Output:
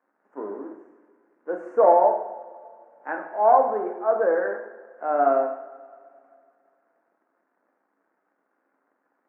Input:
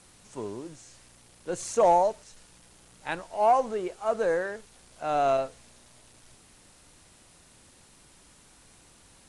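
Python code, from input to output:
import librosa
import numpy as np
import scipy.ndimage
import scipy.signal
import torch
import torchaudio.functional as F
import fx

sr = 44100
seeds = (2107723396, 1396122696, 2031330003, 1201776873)

y = np.sign(x) * np.maximum(np.abs(x) - 10.0 ** (-53.0 / 20.0), 0.0)
y = scipy.signal.sosfilt(scipy.signal.ellip(3, 1.0, 40, [260.0, 1600.0], 'bandpass', fs=sr, output='sos'), y)
y = fx.rev_double_slope(y, sr, seeds[0], early_s=0.76, late_s=2.5, knee_db=-17, drr_db=2.5)
y = y * 10.0 ** (3.5 / 20.0)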